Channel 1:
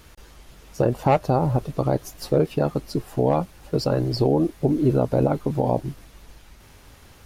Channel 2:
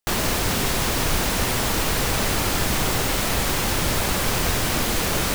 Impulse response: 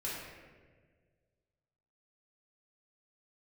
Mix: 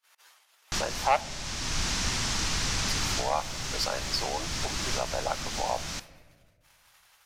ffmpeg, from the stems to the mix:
-filter_complex "[0:a]highpass=f=590:w=0.5412,highpass=f=590:w=1.3066,agate=range=0.0282:threshold=0.00251:ratio=16:detection=peak,volume=1.19,asplit=3[s0][s1][s2];[s0]atrim=end=1.21,asetpts=PTS-STARTPTS,afade=t=out:st=1.206:d=0.004:c=hsin[s3];[s1]atrim=start=1.21:end=2.88,asetpts=PTS-STARTPTS,volume=0[s4];[s2]atrim=start=2.88,asetpts=PTS-STARTPTS,afade=t=in:d=0.004:c=hsin[s5];[s3][s4][s5]concat=n=3:v=0:a=1,asplit=3[s6][s7][s8];[s7]volume=0.106[s9];[1:a]lowpass=f=6000:t=q:w=2.2,adelay=650,volume=0.447,asplit=2[s10][s11];[s11]volume=0.0944[s12];[s8]apad=whole_len=264385[s13];[s10][s13]sidechaincompress=threshold=0.0316:ratio=5:attack=39:release=642[s14];[2:a]atrim=start_sample=2205[s15];[s9][s12]amix=inputs=2:normalize=0[s16];[s16][s15]afir=irnorm=-1:irlink=0[s17];[s6][s14][s17]amix=inputs=3:normalize=0,equalizer=f=490:t=o:w=1.3:g=-10"

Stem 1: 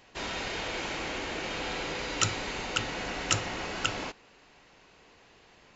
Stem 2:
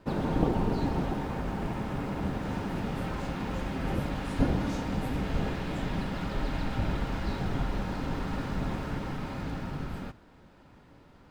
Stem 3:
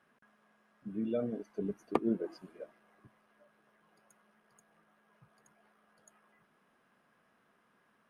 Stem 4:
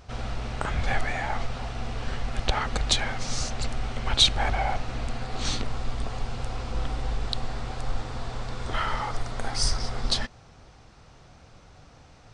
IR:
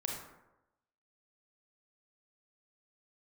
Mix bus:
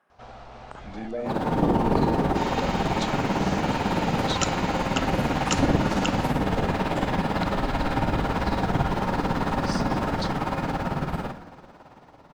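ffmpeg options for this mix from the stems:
-filter_complex "[0:a]adelay=2200,volume=0.335[s0];[1:a]tremolo=f=18:d=0.76,adelay=1200,volume=1,asplit=2[s1][s2];[s2]volume=0.708[s3];[2:a]volume=0.531,asplit=2[s4][s5];[s5]volume=0.531[s6];[3:a]lowpass=6900,acrossover=split=420|3000[s7][s8][s9];[s8]acompressor=threshold=0.0126:ratio=6[s10];[s7][s10][s9]amix=inputs=3:normalize=0,adelay=100,volume=0.251[s11];[s1][s4][s11]amix=inputs=3:normalize=0,equalizer=f=800:t=o:w=1.7:g=11.5,acompressor=threshold=0.0178:ratio=6,volume=1[s12];[4:a]atrim=start_sample=2205[s13];[s3][s6]amix=inputs=2:normalize=0[s14];[s14][s13]afir=irnorm=-1:irlink=0[s15];[s0][s12][s15]amix=inputs=3:normalize=0,lowshelf=f=88:g=-7,dynaudnorm=f=120:g=21:m=2.82"

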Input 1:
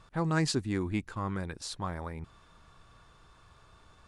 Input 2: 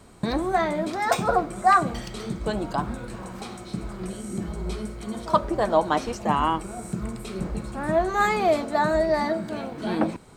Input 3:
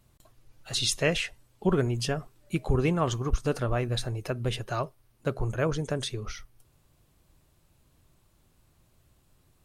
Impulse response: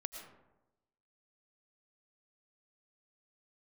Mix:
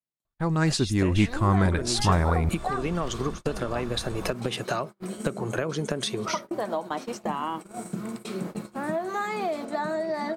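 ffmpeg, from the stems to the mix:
-filter_complex "[0:a]adelay=250,volume=1.26[s0];[1:a]acompressor=mode=upward:threshold=0.0447:ratio=2.5,adelay=1000,volume=0.224[s1];[2:a]acompressor=threshold=0.0447:ratio=6,volume=1.41[s2];[s1][s2]amix=inputs=2:normalize=0,highpass=f=170:w=0.5412,highpass=f=170:w=1.3066,acompressor=threshold=0.0126:ratio=6,volume=1[s3];[s0][s3]amix=inputs=2:normalize=0,agate=range=0.0141:threshold=0.00447:ratio=16:detection=peak,lowshelf=f=71:g=11.5,dynaudnorm=f=760:g=3:m=3.98"

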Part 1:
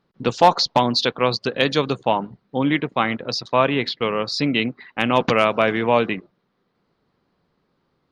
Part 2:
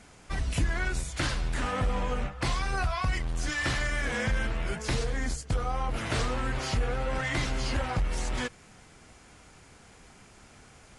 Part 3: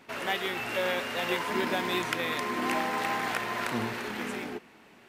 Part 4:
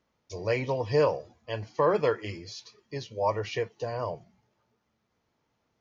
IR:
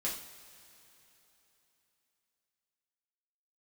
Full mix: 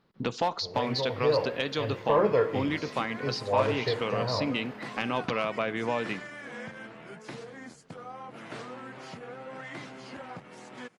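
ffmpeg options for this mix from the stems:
-filter_complex "[0:a]highshelf=f=2300:g=9.5,acompressor=threshold=0.0316:ratio=2.5,volume=0.891,asplit=2[s0][s1];[s1]volume=0.1[s2];[1:a]highpass=f=160:w=0.5412,highpass=f=160:w=1.3066,adelay=2400,volume=0.398[s3];[2:a]alimiter=limit=0.0631:level=0:latency=1:release=286,adelay=650,volume=0.211,asplit=2[s4][s5];[s5]volume=0.501[s6];[3:a]dynaudnorm=f=250:g=9:m=2.51,adelay=300,volume=0.316,asplit=2[s7][s8];[s8]volume=0.631[s9];[4:a]atrim=start_sample=2205[s10];[s2][s6][s9]amix=inputs=3:normalize=0[s11];[s11][s10]afir=irnorm=-1:irlink=0[s12];[s0][s3][s4][s7][s12]amix=inputs=5:normalize=0,highshelf=f=3600:g=-11,asoftclip=type=tanh:threshold=0.266"

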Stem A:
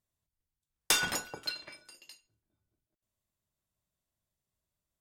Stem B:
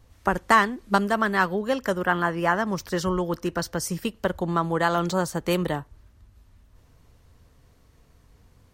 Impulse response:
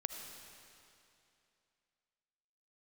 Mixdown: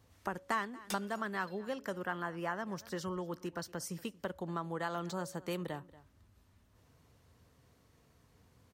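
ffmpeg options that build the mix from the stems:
-filter_complex "[0:a]volume=1.19[s0];[1:a]highpass=94,bandreject=f=279.9:t=h:w=4,bandreject=f=559.8:t=h:w=4,volume=0.531,asplit=3[s1][s2][s3];[s2]volume=0.0708[s4];[s3]apad=whole_len=220775[s5];[s0][s5]sidechaincompress=threshold=0.00562:ratio=8:attack=48:release=309[s6];[s4]aecho=0:1:233:1[s7];[s6][s1][s7]amix=inputs=3:normalize=0,acompressor=threshold=0.00316:ratio=1.5"

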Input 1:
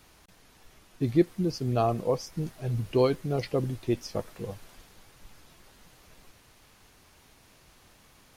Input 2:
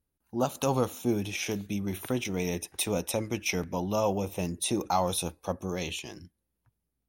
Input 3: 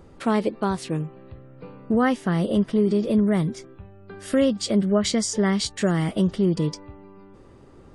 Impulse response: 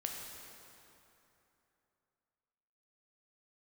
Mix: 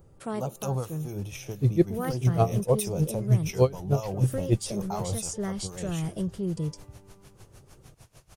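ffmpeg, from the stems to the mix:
-filter_complex "[0:a]lowpass=11000,dynaudnorm=f=130:g=7:m=5.01,aeval=exprs='val(0)*pow(10,-22*(0.5-0.5*cos(2*PI*6.6*n/s))/20)':c=same,adelay=600,volume=0.668[s0];[1:a]acrossover=split=1100[s1][s2];[s1]aeval=exprs='val(0)*(1-0.7/2+0.7/2*cos(2*PI*4.1*n/s))':c=same[s3];[s2]aeval=exprs='val(0)*(1-0.7/2-0.7/2*cos(2*PI*4.1*n/s))':c=same[s4];[s3][s4]amix=inputs=2:normalize=0,volume=1.06,asplit=2[s5][s6];[2:a]highshelf=f=9800:g=12,volume=0.473[s7];[s6]apad=whole_len=350249[s8];[s7][s8]sidechaincompress=threshold=0.0251:ratio=8:attack=16:release=197[s9];[s0][s5][s9]amix=inputs=3:normalize=0,equalizer=f=125:t=o:w=1:g=7,equalizer=f=250:t=o:w=1:g=-9,equalizer=f=1000:t=o:w=1:g=-4,equalizer=f=2000:t=o:w=1:g=-7,equalizer=f=4000:t=o:w=1:g=-7"

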